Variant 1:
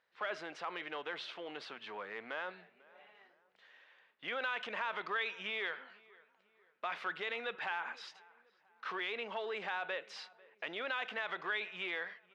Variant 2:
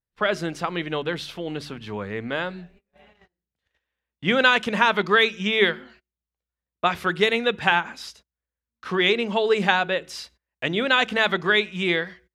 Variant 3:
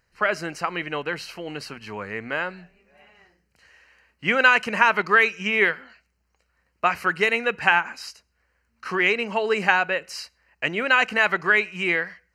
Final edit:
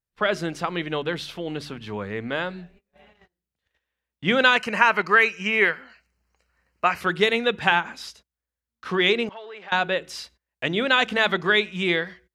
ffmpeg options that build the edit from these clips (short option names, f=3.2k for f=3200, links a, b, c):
-filter_complex "[1:a]asplit=3[a][b][c];[a]atrim=end=4.572[d];[2:a]atrim=start=4.568:end=7.012[e];[b]atrim=start=7.008:end=9.292[f];[0:a]atrim=start=9.288:end=9.722[g];[c]atrim=start=9.718[h];[d][e]acrossfade=d=0.004:c1=hsin:c2=hsin[i];[i][f]acrossfade=d=0.004:c1=hsin:c2=hsin[j];[j][g]acrossfade=d=0.004:c1=hsin:c2=hsin[k];[k][h]acrossfade=d=0.004:c1=hsin:c2=hsin"